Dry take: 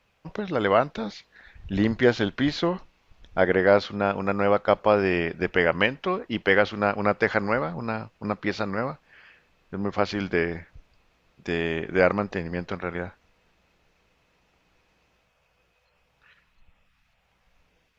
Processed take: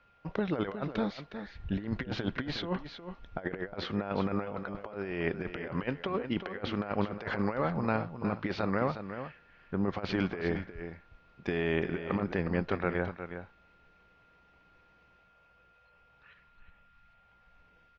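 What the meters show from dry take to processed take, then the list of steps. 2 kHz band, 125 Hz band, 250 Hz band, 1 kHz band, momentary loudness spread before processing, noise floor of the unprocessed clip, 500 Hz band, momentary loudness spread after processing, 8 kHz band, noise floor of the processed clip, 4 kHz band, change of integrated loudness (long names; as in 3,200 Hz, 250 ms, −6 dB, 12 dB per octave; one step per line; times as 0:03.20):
−11.5 dB, −3.5 dB, −5.5 dB, −10.0 dB, 12 LU, −68 dBFS, −11.0 dB, 12 LU, can't be measured, −64 dBFS, −8.0 dB, −9.5 dB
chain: compressor whose output falls as the input rises −27 dBFS, ratio −0.5
steady tone 1,400 Hz −59 dBFS
high-frequency loss of the air 190 metres
single-tap delay 362 ms −10 dB
level −4 dB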